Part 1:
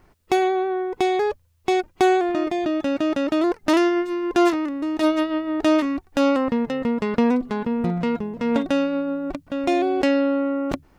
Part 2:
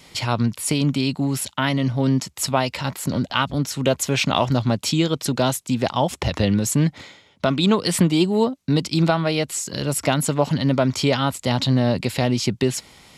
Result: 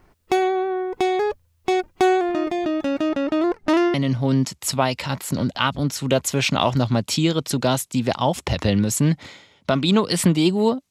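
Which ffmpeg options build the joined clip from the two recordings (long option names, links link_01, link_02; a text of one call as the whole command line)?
ffmpeg -i cue0.wav -i cue1.wav -filter_complex "[0:a]asettb=1/sr,asplit=3[link_01][link_02][link_03];[link_01]atrim=end=3.094[link_04];[link_02]atrim=start=3.09:end=3.94,asetpts=PTS-STARTPTS,afade=type=in:duration=0.004:curve=qsin,afade=type=out:start_time=0.846:duration=0.004:curve=qsin,lowpass=frequency=3900:poles=1[link_05];[link_03]atrim=start=3.936[link_06];[link_04][link_05]acrossfade=duration=0.004:curve1=hsin:curve2=qsin[link_07];[link_07][link_06]acrossfade=duration=0.004:curve1=qsin:curve2=hsin,apad=whole_dur=10.9,atrim=end=10.9,atrim=end=3.942[link_08];[1:a]atrim=start=1.688:end=8.65[link_09];[link_08][link_09]acrossfade=duration=0.004:curve1=hsin:curve2=hsin" out.wav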